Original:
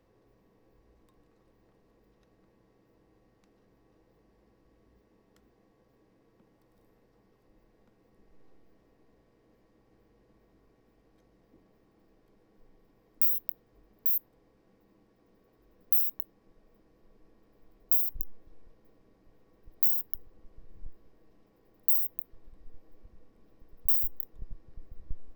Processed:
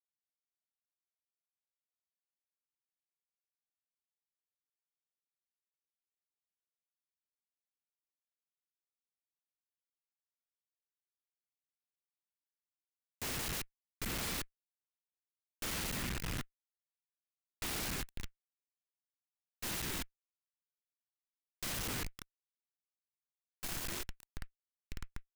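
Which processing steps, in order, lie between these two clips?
stepped spectrum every 0.4 s; Schmitt trigger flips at -35.5 dBFS; noise-modulated delay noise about 1800 Hz, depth 0.43 ms; gain +5.5 dB

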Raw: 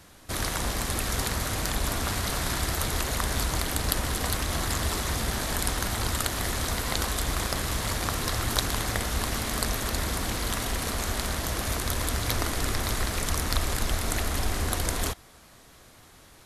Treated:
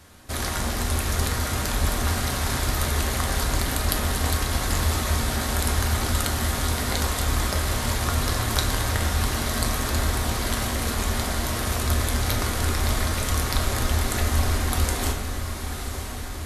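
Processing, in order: diffused feedback echo 0.993 s, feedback 69%, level -9 dB; on a send at -2 dB: reverb RT60 1.0 s, pre-delay 6 ms

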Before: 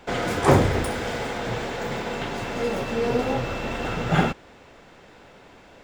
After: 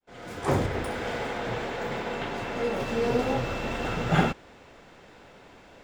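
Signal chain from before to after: opening faded in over 1.11 s; 0.66–2.8 tone controls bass -3 dB, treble -6 dB; gain -2 dB

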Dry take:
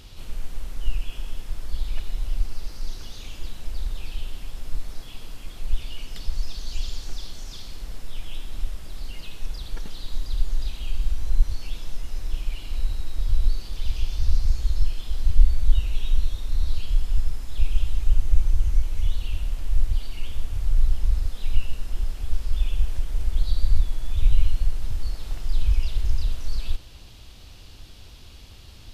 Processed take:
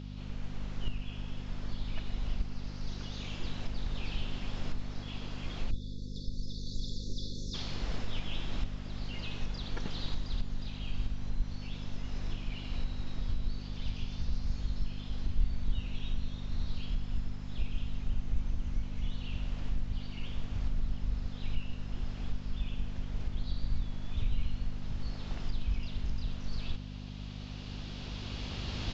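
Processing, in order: recorder AGC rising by 7.1 dB/s; hum 50 Hz, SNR 15 dB; low shelf 77 Hz -11 dB; spectral delete 5.71–7.54, 560–3400 Hz; air absorption 120 m; downsampling 16000 Hz; gain -5 dB

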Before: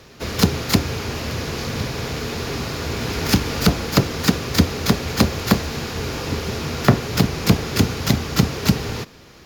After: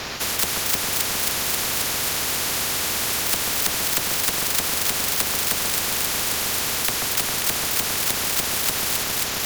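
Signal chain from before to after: one-sided fold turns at -11 dBFS; echo with dull and thin repeats by turns 0.134 s, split 1600 Hz, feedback 86%, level -6 dB; spectral compressor 10:1; gain -1 dB

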